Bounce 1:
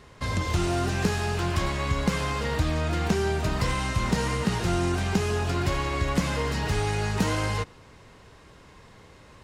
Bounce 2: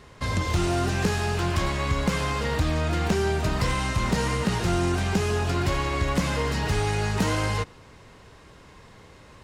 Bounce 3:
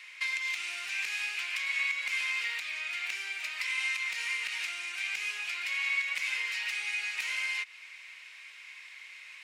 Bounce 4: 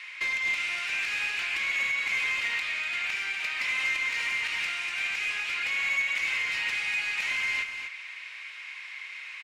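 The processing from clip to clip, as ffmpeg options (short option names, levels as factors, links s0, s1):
-af "volume=7.94,asoftclip=hard,volume=0.126,volume=1.19"
-af "acompressor=threshold=0.0316:ratio=6,highpass=f=2300:t=q:w=6.4"
-filter_complex "[0:a]asplit=2[s0][s1];[s1]highpass=f=720:p=1,volume=5.62,asoftclip=type=tanh:threshold=0.112[s2];[s0][s2]amix=inputs=2:normalize=0,lowpass=f=2300:p=1,volume=0.501,asplit=2[s3][s4];[s4]aecho=0:1:244:0.422[s5];[s3][s5]amix=inputs=2:normalize=0"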